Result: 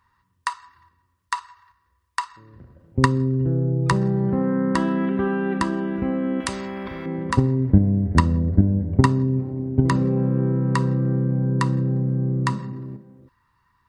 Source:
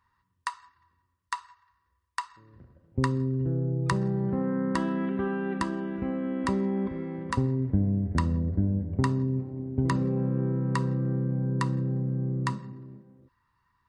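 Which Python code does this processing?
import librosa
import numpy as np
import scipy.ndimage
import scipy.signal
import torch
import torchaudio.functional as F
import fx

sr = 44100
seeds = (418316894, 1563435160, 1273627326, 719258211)

p1 = fx.level_steps(x, sr, step_db=23)
p2 = x + F.gain(torch.from_numpy(p1), 0.5).numpy()
p3 = fx.spectral_comp(p2, sr, ratio=2.0, at=(6.4, 7.06))
y = F.gain(torch.from_numpy(p3), 5.5).numpy()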